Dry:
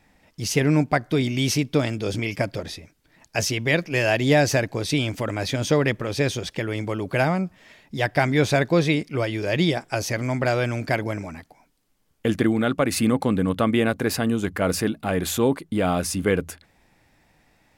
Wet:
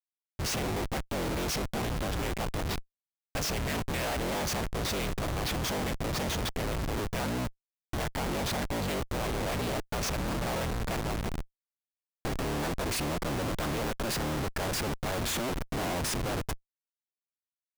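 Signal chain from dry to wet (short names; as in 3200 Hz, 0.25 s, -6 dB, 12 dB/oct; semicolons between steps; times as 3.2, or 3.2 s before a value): cycle switcher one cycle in 3, inverted; Schmitt trigger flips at -31.5 dBFS; gain -7.5 dB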